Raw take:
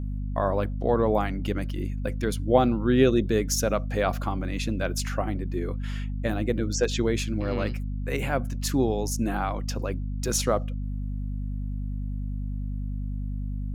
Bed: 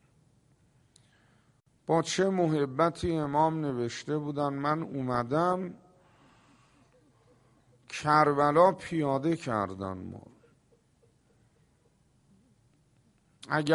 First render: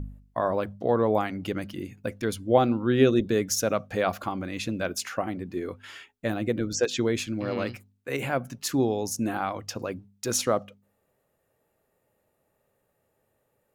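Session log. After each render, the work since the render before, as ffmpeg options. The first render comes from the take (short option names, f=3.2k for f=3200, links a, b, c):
-af "bandreject=f=50:t=h:w=4,bandreject=f=100:t=h:w=4,bandreject=f=150:t=h:w=4,bandreject=f=200:t=h:w=4,bandreject=f=250:t=h:w=4"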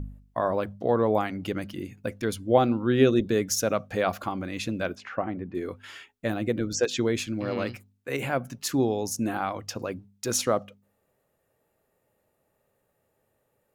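-filter_complex "[0:a]asettb=1/sr,asplit=3[a][b][c];[a]atrim=end=4.954[d];[b]atrim=start=4.95:end=5.55,asetpts=PTS-STARTPTS,afade=t=in:d=0.004:c=qsin,afade=t=out:st=0.596:d=0.004:c=qsin,lowpass=2.1k[e];[c]atrim=start=5.546[f];[d][e]acrossfade=d=0.004:c1=hsin:c2=qsin[g];[g][f]acrossfade=d=0.004:c1=qsin:c2=hsin"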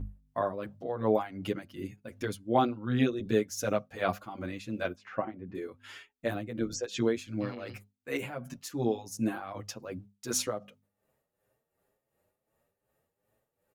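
-filter_complex "[0:a]tremolo=f=2.7:d=0.7,asplit=2[a][b];[b]adelay=8,afreqshift=2.2[c];[a][c]amix=inputs=2:normalize=1"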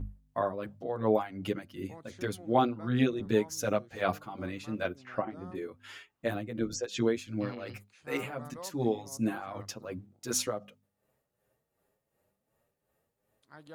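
-filter_complex "[1:a]volume=-24dB[a];[0:a][a]amix=inputs=2:normalize=0"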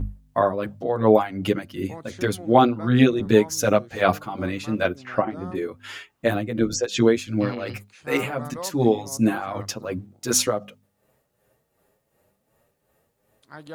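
-af "volume=10.5dB,alimiter=limit=-3dB:level=0:latency=1"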